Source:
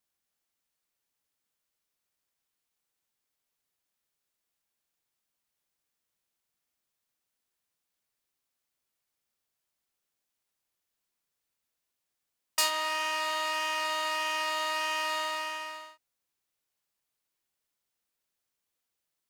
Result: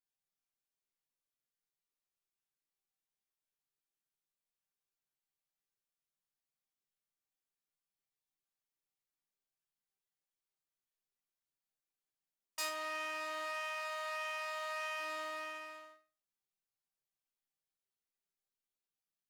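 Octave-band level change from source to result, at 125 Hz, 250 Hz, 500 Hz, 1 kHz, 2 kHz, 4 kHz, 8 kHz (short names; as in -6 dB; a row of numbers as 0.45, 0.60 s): n/a, -8.5 dB, -6.0 dB, -10.5 dB, -8.5 dB, -14.5 dB, -13.0 dB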